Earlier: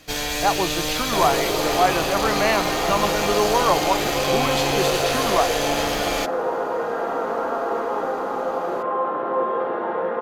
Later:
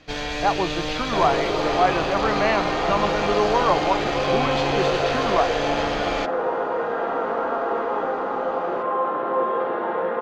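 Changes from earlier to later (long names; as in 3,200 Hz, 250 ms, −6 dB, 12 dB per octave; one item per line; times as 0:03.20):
second sound: add high-shelf EQ 2,900 Hz +11 dB
master: add high-frequency loss of the air 170 metres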